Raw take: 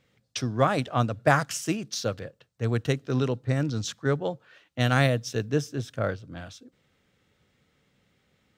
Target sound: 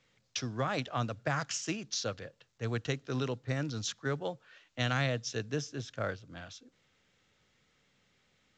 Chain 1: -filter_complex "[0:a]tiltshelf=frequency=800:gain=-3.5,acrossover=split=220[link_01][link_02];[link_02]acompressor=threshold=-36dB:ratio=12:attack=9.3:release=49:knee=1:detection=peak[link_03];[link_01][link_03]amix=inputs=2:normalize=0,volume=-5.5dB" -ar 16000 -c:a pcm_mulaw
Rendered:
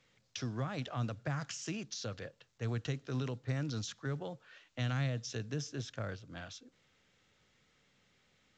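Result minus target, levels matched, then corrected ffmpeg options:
downward compressor: peak gain reduction +9 dB
-filter_complex "[0:a]tiltshelf=frequency=800:gain=-3.5,acrossover=split=220[link_01][link_02];[link_02]acompressor=threshold=-26dB:ratio=12:attack=9.3:release=49:knee=1:detection=peak[link_03];[link_01][link_03]amix=inputs=2:normalize=0,volume=-5.5dB" -ar 16000 -c:a pcm_mulaw

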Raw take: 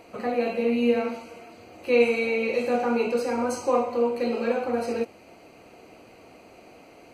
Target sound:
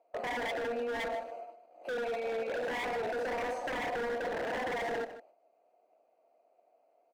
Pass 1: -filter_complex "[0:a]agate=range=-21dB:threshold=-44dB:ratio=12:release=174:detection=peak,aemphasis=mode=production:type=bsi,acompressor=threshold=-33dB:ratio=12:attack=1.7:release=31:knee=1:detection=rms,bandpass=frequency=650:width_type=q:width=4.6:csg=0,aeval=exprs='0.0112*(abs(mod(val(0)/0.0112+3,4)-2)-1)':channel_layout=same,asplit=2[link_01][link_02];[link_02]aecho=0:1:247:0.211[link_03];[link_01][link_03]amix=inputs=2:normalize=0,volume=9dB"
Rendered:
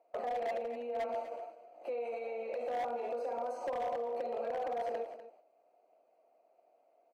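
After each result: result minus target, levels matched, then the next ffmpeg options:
echo 93 ms late; downward compressor: peak gain reduction +6.5 dB
-filter_complex "[0:a]agate=range=-21dB:threshold=-44dB:ratio=12:release=174:detection=peak,aemphasis=mode=production:type=bsi,acompressor=threshold=-33dB:ratio=12:attack=1.7:release=31:knee=1:detection=rms,bandpass=frequency=650:width_type=q:width=4.6:csg=0,aeval=exprs='0.0112*(abs(mod(val(0)/0.0112+3,4)-2)-1)':channel_layout=same,asplit=2[link_01][link_02];[link_02]aecho=0:1:154:0.211[link_03];[link_01][link_03]amix=inputs=2:normalize=0,volume=9dB"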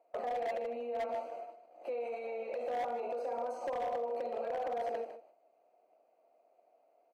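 downward compressor: peak gain reduction +6.5 dB
-filter_complex "[0:a]agate=range=-21dB:threshold=-44dB:ratio=12:release=174:detection=peak,aemphasis=mode=production:type=bsi,acompressor=threshold=-26dB:ratio=12:attack=1.7:release=31:knee=1:detection=rms,bandpass=frequency=650:width_type=q:width=4.6:csg=0,aeval=exprs='0.0112*(abs(mod(val(0)/0.0112+3,4)-2)-1)':channel_layout=same,asplit=2[link_01][link_02];[link_02]aecho=0:1:154:0.211[link_03];[link_01][link_03]amix=inputs=2:normalize=0,volume=9dB"

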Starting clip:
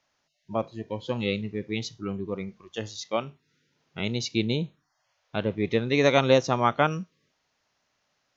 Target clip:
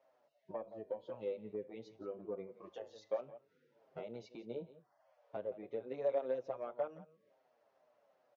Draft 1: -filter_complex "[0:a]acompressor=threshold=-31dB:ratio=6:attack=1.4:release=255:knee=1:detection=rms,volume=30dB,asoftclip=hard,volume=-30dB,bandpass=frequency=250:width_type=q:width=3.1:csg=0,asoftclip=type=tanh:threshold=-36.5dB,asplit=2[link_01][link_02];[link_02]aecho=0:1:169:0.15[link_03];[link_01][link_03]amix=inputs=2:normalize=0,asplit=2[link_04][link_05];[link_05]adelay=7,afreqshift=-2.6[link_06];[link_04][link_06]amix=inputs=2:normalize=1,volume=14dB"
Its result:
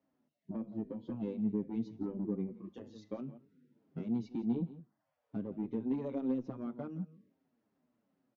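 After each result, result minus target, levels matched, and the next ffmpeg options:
250 Hz band +12.5 dB; downward compressor: peak gain reduction −6 dB
-filter_complex "[0:a]acompressor=threshold=-31dB:ratio=6:attack=1.4:release=255:knee=1:detection=rms,volume=30dB,asoftclip=hard,volume=-30dB,bandpass=frequency=580:width_type=q:width=3.1:csg=0,asoftclip=type=tanh:threshold=-36.5dB,asplit=2[link_01][link_02];[link_02]aecho=0:1:169:0.15[link_03];[link_01][link_03]amix=inputs=2:normalize=0,asplit=2[link_04][link_05];[link_05]adelay=7,afreqshift=-2.6[link_06];[link_04][link_06]amix=inputs=2:normalize=1,volume=14dB"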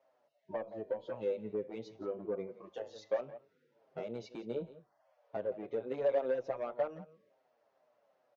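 downward compressor: peak gain reduction −6 dB
-filter_complex "[0:a]acompressor=threshold=-38.5dB:ratio=6:attack=1.4:release=255:knee=1:detection=rms,volume=30dB,asoftclip=hard,volume=-30dB,bandpass=frequency=580:width_type=q:width=3.1:csg=0,asoftclip=type=tanh:threshold=-36.5dB,asplit=2[link_01][link_02];[link_02]aecho=0:1:169:0.15[link_03];[link_01][link_03]amix=inputs=2:normalize=0,asplit=2[link_04][link_05];[link_05]adelay=7,afreqshift=-2.6[link_06];[link_04][link_06]amix=inputs=2:normalize=1,volume=14dB"

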